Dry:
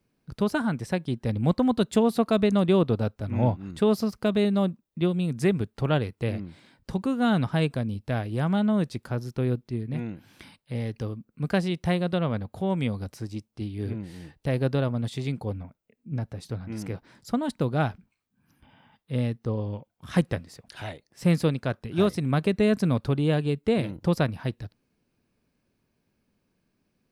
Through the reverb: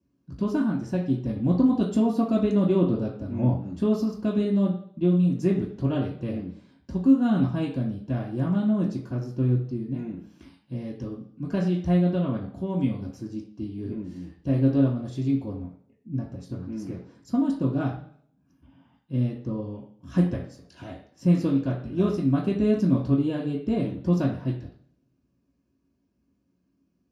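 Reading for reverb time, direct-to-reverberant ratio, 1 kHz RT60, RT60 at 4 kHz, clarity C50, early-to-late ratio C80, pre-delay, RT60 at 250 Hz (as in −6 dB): 0.55 s, −6.5 dB, 0.55 s, 0.60 s, 6.5 dB, 10.0 dB, 3 ms, 0.60 s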